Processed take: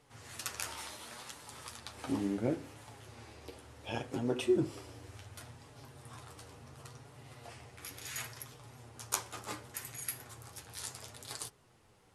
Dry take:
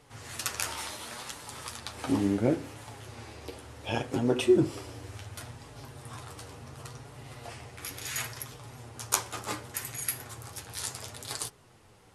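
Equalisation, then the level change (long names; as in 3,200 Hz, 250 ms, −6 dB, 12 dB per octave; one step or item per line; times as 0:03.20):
mains-hum notches 50/100 Hz
−7.0 dB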